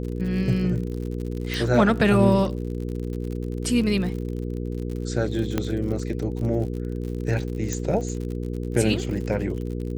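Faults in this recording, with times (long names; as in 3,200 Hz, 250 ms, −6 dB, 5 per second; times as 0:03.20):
surface crackle 66 per second −32 dBFS
mains hum 60 Hz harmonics 8 −29 dBFS
0:01.54: click
0:05.58: click −10 dBFS
0:07.73: click −14 dBFS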